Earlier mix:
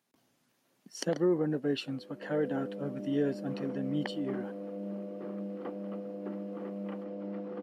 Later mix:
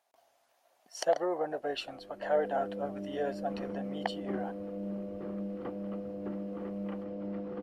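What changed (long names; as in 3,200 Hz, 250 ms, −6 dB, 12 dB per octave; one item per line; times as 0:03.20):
speech: add high-pass with resonance 680 Hz, resonance Q 4.9
master: remove high-pass filter 180 Hz 24 dB per octave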